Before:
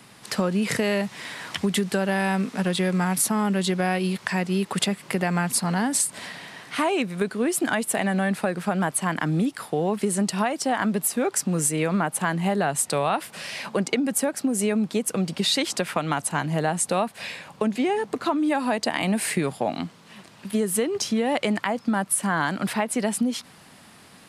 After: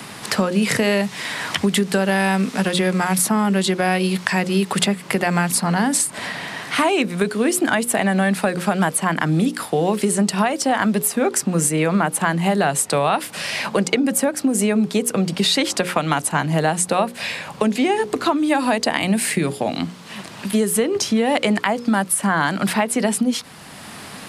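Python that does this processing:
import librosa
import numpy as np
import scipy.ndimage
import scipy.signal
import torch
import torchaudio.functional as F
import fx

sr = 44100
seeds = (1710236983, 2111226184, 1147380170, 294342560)

y = fx.peak_eq(x, sr, hz=920.0, db=-5.0, octaves=1.8, at=(18.98, 19.83))
y = fx.hum_notches(y, sr, base_hz=60, count=9)
y = fx.band_squash(y, sr, depth_pct=40)
y = y * 10.0 ** (5.5 / 20.0)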